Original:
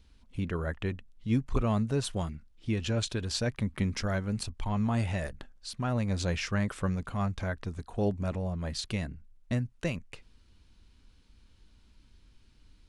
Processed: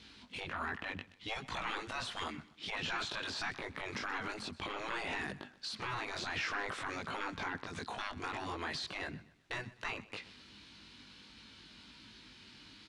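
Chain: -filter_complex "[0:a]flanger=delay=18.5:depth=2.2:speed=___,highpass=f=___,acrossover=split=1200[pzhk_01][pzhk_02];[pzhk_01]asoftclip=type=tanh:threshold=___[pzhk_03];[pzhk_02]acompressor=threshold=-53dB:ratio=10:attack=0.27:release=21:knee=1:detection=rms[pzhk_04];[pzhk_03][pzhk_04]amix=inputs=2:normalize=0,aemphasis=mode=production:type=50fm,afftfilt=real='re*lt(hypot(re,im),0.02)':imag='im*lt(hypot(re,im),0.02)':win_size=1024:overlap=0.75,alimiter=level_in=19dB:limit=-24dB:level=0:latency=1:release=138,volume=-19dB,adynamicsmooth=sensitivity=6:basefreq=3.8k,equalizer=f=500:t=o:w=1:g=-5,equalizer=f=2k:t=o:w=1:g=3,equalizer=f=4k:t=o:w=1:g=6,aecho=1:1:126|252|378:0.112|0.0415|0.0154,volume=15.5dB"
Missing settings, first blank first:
1.4, 200, -30.5dB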